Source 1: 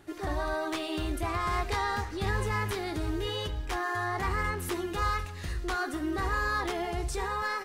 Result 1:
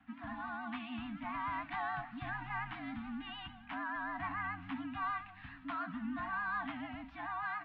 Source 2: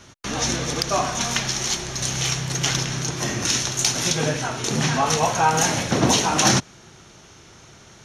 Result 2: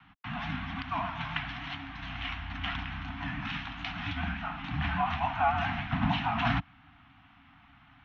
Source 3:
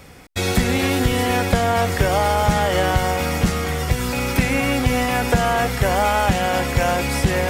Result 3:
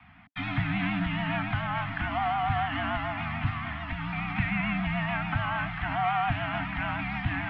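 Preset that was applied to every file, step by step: vibrato 6.9 Hz 66 cents; Chebyshev band-stop 360–780 Hz, order 4; mistuned SSB -78 Hz 150–3100 Hz; trim -6.5 dB

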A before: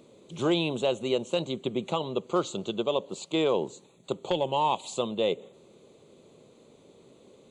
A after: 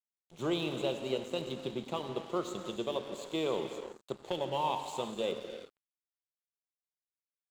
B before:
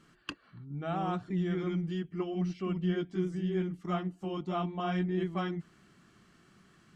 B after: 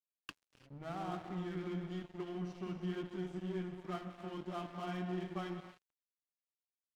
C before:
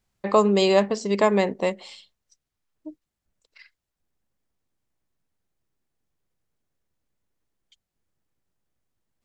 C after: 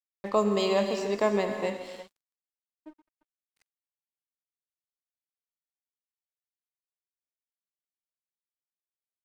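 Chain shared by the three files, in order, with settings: gated-style reverb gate 380 ms flat, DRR 4.5 dB; crossover distortion -42.5 dBFS; trim -7 dB

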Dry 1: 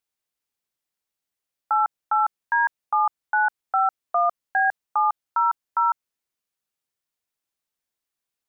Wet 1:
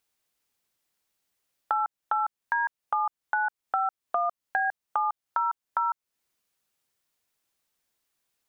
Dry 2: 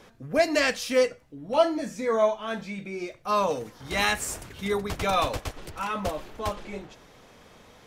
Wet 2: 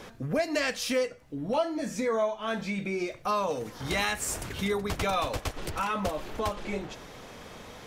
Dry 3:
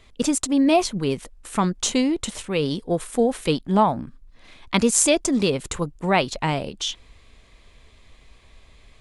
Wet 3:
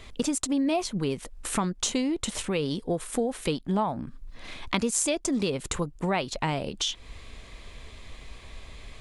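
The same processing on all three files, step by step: compression 3:1, threshold -36 dBFS; trim +7 dB

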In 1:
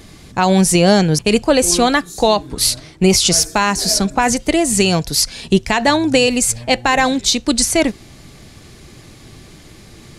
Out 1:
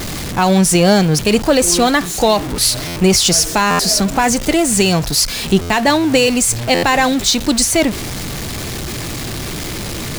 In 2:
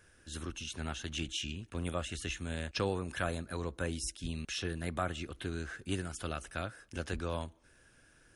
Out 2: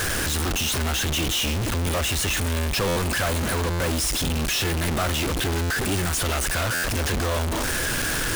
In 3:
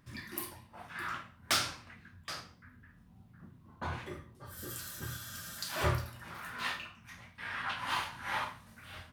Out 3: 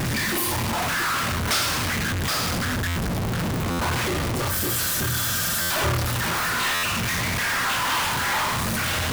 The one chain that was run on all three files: jump at every zero crossing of -18 dBFS; buffer glitch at 2.87/3.70/5.61/6.74 s, samples 512, times 7; trim -1 dB

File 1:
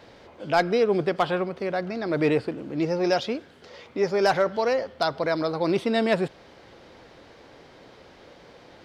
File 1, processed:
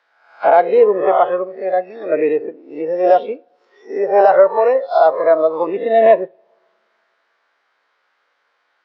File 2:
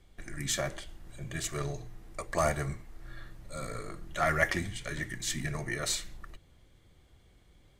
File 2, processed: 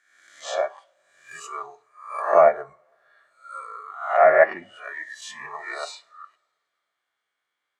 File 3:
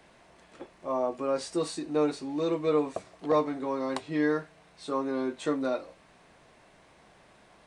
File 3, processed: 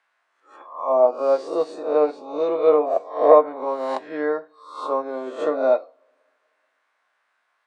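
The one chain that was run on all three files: reverse spectral sustain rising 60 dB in 0.85 s; low-pass that closes with the level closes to 2.5 kHz, closed at -19 dBFS; spectral noise reduction 15 dB; dynamic bell 210 Hz, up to +4 dB, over -36 dBFS, Q 0.83; auto-wah 630–1400 Hz, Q 2.2, down, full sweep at -25.5 dBFS; RIAA curve recording; two-slope reverb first 0.27 s, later 2.4 s, from -28 dB, DRR 12 dB; loudness maximiser +16.5 dB; upward expansion 1.5:1, over -28 dBFS

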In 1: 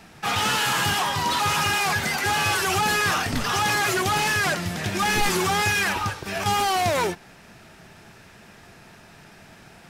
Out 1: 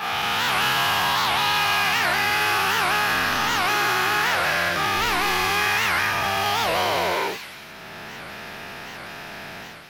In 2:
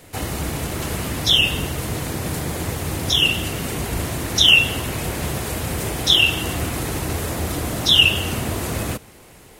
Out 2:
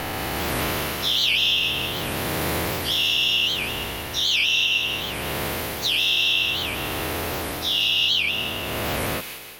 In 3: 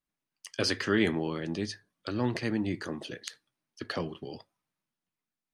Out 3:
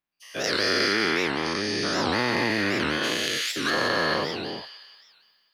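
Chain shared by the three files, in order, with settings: every event in the spectrogram widened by 480 ms; peaking EQ 8 kHz -13.5 dB 0.87 oct; level rider gain up to 12 dB; bass shelf 310 Hz -11 dB; compression 2.5:1, threshold -18 dBFS; feedback echo behind a high-pass 179 ms, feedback 52%, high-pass 2.5 kHz, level -4 dB; warped record 78 rpm, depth 250 cents; trim -3.5 dB

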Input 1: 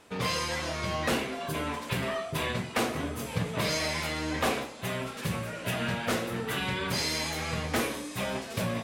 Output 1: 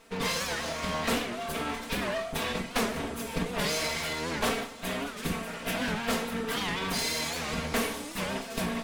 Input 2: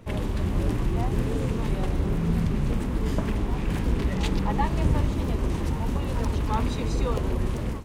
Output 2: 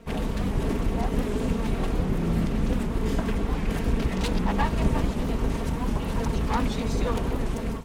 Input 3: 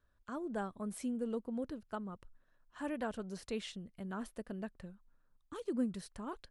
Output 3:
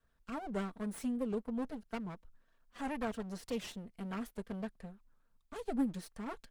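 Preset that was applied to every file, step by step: comb filter that takes the minimum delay 4.4 ms; warped record 78 rpm, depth 160 cents; trim +1.5 dB

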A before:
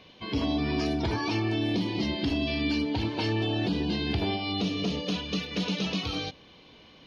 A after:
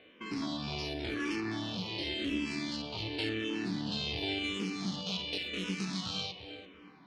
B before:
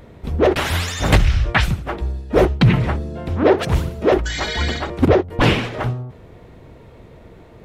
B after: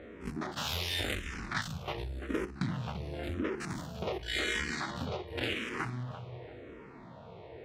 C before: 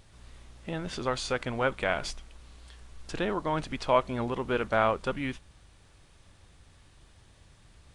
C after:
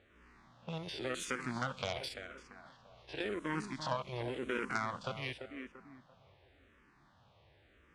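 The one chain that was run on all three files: spectrogram pixelated in time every 50 ms; compression 20:1, threshold -25 dBFS; level-controlled noise filter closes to 2.2 kHz, open at -28.5 dBFS; Chebyshev shaper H 4 -14 dB, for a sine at -15 dBFS; high-pass 260 Hz 6 dB/octave; on a send: filtered feedback delay 341 ms, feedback 34%, low-pass 2.3 kHz, level -10 dB; on the sum: dynamic bell 660 Hz, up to -8 dB, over -47 dBFS, Q 0.78; barber-pole phaser -0.91 Hz; trim +2 dB

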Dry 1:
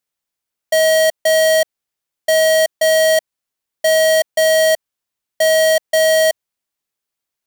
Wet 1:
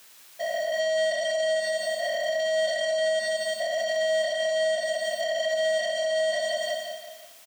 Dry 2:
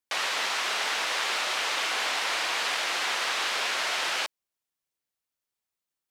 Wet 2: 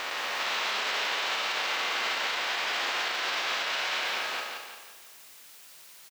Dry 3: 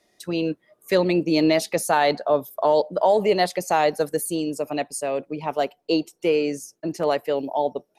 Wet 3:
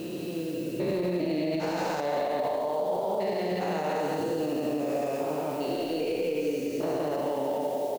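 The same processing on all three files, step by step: spectrogram pixelated in time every 400 ms; dynamic bell 3.8 kHz, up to +6 dB, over -33 dBFS, Q 0.78; steep low-pass 8.3 kHz 96 dB/octave; Schroeder reverb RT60 1.1 s, combs from 30 ms, DRR 3.5 dB; added noise blue -43 dBFS; treble shelf 5.7 kHz -11.5 dB; on a send: feedback delay 172 ms, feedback 42%, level -6 dB; on the sum: compression, threshold -21 dBFS; peak limiter -20.5 dBFS

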